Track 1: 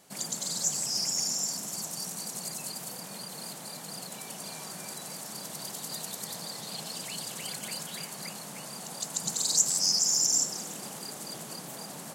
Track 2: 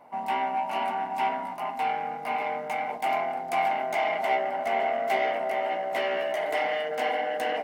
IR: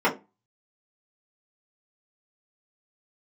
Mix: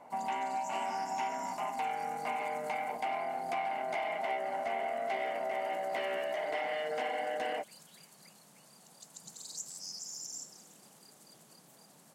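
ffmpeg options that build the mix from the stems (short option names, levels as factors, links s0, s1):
-filter_complex "[0:a]volume=0.126[s0];[1:a]lowpass=6200,volume=0.891[s1];[s0][s1]amix=inputs=2:normalize=0,acompressor=threshold=0.0224:ratio=4"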